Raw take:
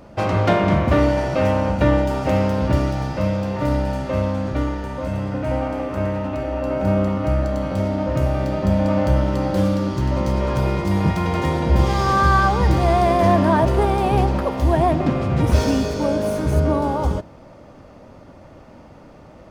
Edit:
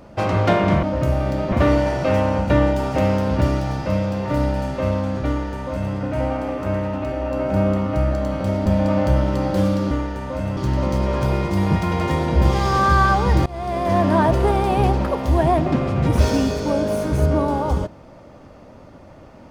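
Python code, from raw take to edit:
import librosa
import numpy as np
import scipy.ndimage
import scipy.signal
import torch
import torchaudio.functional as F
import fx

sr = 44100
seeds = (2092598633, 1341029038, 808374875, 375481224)

y = fx.edit(x, sr, fx.duplicate(start_s=4.59, length_s=0.66, to_s=9.91),
    fx.move(start_s=7.97, length_s=0.69, to_s=0.83),
    fx.fade_in_from(start_s=12.8, length_s=0.7, floor_db=-22.0), tone=tone)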